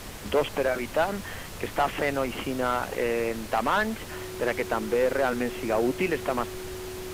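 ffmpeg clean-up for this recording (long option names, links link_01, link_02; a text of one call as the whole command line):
ffmpeg -i in.wav -af "adeclick=threshold=4,bandreject=frequency=95.6:width_type=h:width=4,bandreject=frequency=191.2:width_type=h:width=4,bandreject=frequency=286.8:width_type=h:width=4,bandreject=frequency=382.4:width_type=h:width=4,bandreject=frequency=370:width=30,afftdn=noise_reduction=30:noise_floor=-38" out.wav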